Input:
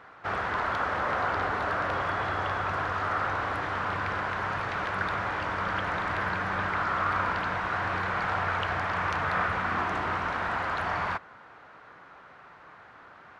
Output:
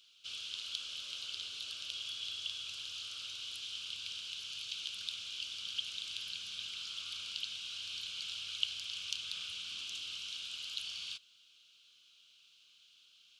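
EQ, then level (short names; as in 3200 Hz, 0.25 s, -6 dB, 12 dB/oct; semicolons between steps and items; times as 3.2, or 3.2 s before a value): elliptic high-pass 3000 Hz, stop band 40 dB; +8.0 dB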